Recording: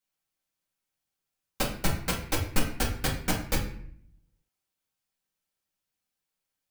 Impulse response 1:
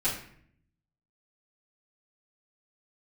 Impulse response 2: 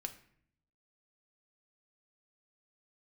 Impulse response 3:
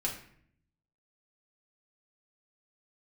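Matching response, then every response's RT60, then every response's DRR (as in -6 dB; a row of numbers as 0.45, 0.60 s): 3; 0.60, 0.60, 0.60 s; -12.5, 6.0, -3.0 dB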